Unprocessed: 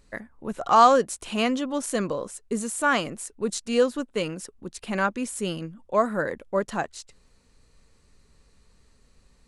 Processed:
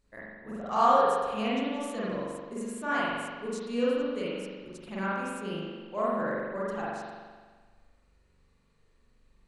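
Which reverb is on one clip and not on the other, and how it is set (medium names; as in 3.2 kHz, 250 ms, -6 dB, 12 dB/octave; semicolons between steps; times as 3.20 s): spring tank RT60 1.5 s, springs 42 ms, chirp 45 ms, DRR -8.5 dB; trim -14.5 dB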